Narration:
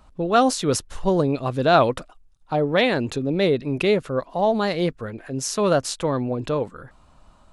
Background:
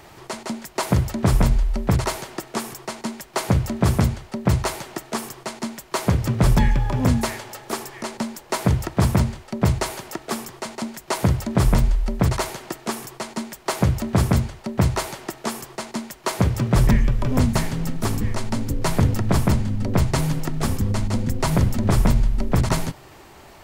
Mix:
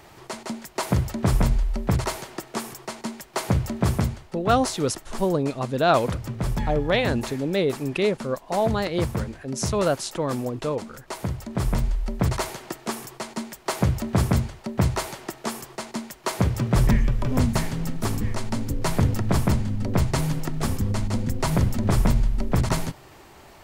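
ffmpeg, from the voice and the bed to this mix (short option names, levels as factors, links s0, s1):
-filter_complex "[0:a]adelay=4150,volume=0.708[s0];[1:a]volume=1.58,afade=t=out:st=3.79:d=0.68:silence=0.473151,afade=t=in:st=11.35:d=1.08:silence=0.446684[s1];[s0][s1]amix=inputs=2:normalize=0"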